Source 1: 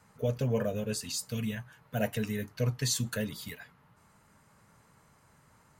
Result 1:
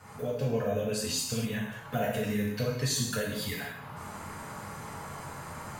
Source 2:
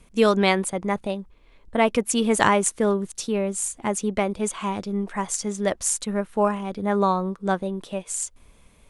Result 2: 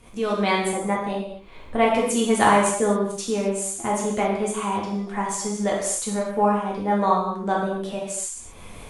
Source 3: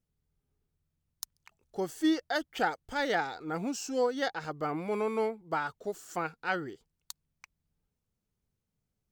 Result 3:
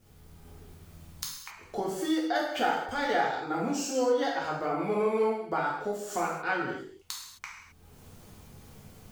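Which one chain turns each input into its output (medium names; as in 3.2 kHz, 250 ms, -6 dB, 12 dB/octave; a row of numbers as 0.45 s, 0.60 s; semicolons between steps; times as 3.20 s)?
fade-in on the opening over 0.60 s; peaking EQ 730 Hz +4.5 dB 2.6 oct; upward compressor, threshold -22 dBFS; gated-style reverb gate 290 ms falling, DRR -3.5 dB; trim -6.5 dB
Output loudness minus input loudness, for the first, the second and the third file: +0.5 LU, +1.0 LU, +2.5 LU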